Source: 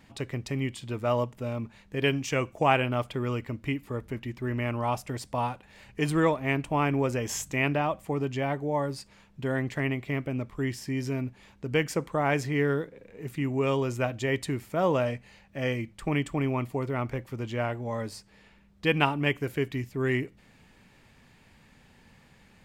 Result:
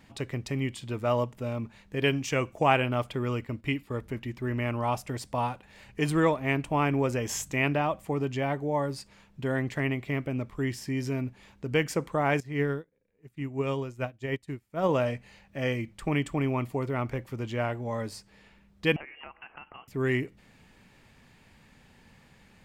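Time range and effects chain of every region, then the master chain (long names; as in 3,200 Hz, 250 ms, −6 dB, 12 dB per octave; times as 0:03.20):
0:03.46–0:04.01: notch filter 6,200 Hz, Q 15 + noise gate −47 dBFS, range −7 dB + dynamic equaliser 3,700 Hz, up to +5 dB, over −49 dBFS, Q 0.74
0:12.40–0:14.89: low-shelf EQ 110 Hz +6.5 dB + expander for the loud parts 2.5 to 1, over −39 dBFS
0:18.96–0:19.88: high-pass filter 800 Hz + downward compressor, threshold −41 dBFS + voice inversion scrambler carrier 3,100 Hz
whole clip: no processing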